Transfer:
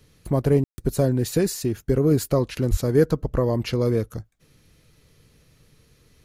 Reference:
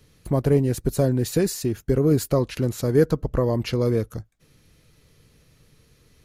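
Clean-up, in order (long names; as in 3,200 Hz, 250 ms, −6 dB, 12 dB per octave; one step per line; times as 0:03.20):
0:02.70–0:02.82: high-pass filter 140 Hz 24 dB per octave
ambience match 0:00.64–0:00.78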